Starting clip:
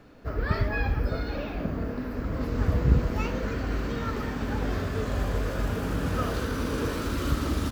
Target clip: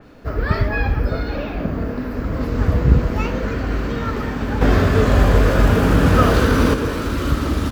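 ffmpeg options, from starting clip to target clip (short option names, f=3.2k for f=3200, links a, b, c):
-filter_complex "[0:a]asettb=1/sr,asplit=3[a][b][c];[a]atrim=end=4.614[d];[b]atrim=start=4.61:end=6.74,asetpts=PTS-STARTPTS,afade=t=in:d=0.004:c=qsin,afade=t=out:st=2.126:d=0.004:c=qsin,acontrast=82[e];[c]atrim=start=6.736[f];[d][e]acrossfade=d=0.004:c1=hsin:c2=qsin[g];[g][f]acrossfade=d=0.004:c1=qsin:c2=hsin,adynamicequalizer=threshold=0.00447:dfrequency=3800:dqfactor=0.7:tfrequency=3800:tqfactor=0.7:attack=5:release=100:ratio=0.375:range=2:mode=cutabove:tftype=highshelf,volume=7.5dB"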